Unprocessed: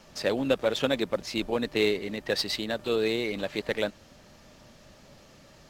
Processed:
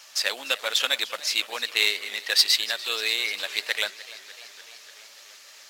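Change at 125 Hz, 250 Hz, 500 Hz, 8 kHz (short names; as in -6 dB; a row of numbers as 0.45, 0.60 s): under -30 dB, -20.0 dB, -10.5 dB, +13.0 dB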